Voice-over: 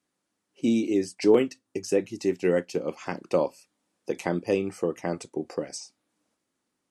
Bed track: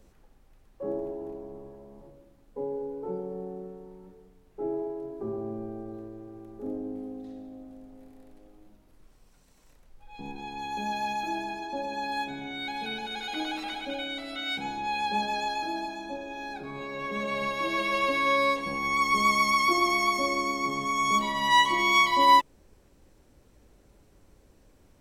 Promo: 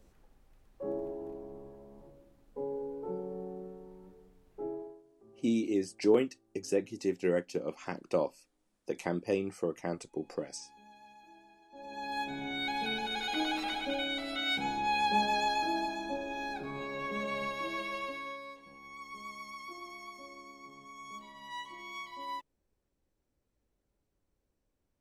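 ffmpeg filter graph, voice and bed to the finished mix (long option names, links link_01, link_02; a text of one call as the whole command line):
ffmpeg -i stem1.wav -i stem2.wav -filter_complex "[0:a]adelay=4800,volume=-6dB[link_01];[1:a]volume=21.5dB,afade=type=out:start_time=4.52:duration=0.51:silence=0.0841395,afade=type=in:start_time=11.7:duration=0.83:silence=0.0530884,afade=type=out:start_time=16.36:duration=2.05:silence=0.0794328[link_02];[link_01][link_02]amix=inputs=2:normalize=0" out.wav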